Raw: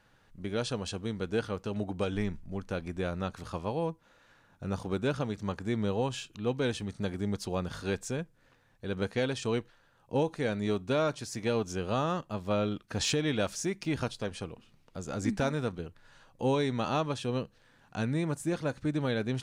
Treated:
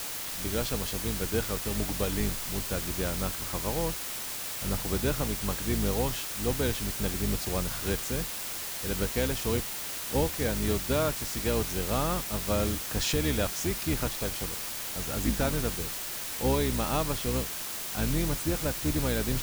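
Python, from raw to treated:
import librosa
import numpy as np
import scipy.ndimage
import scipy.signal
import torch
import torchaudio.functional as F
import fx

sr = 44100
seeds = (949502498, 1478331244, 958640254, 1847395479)

y = fx.octave_divider(x, sr, octaves=2, level_db=0.0)
y = fx.quant_dither(y, sr, seeds[0], bits=6, dither='triangular')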